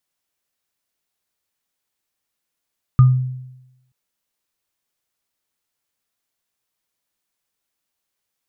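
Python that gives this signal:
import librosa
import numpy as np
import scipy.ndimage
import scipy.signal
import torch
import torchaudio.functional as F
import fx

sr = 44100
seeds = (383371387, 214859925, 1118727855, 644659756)

y = fx.additive_free(sr, length_s=0.93, hz=128.0, level_db=-4.5, upper_db=(-16,), decay_s=0.93, upper_decays_s=(0.24,), upper_hz=(1220.0,))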